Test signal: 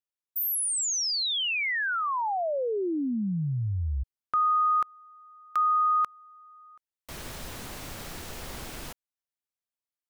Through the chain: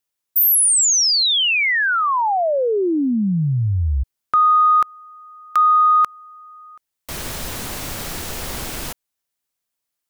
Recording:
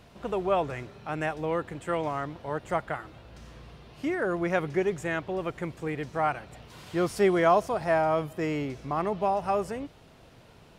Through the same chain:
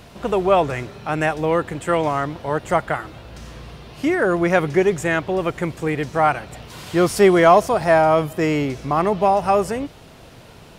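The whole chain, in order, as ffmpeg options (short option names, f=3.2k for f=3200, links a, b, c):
-af "highshelf=f=5.5k:g=4.5,acontrast=79,volume=3dB"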